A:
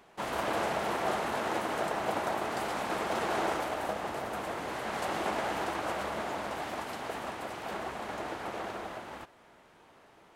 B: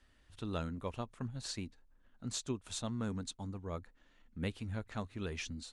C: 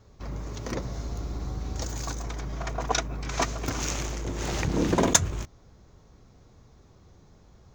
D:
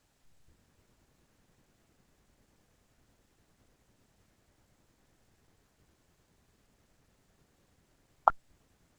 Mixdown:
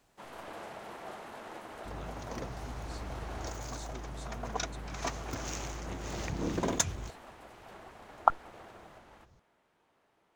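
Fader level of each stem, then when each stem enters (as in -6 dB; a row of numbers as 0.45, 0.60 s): -13.5, -11.0, -9.0, +0.5 dB; 0.00, 1.45, 1.65, 0.00 s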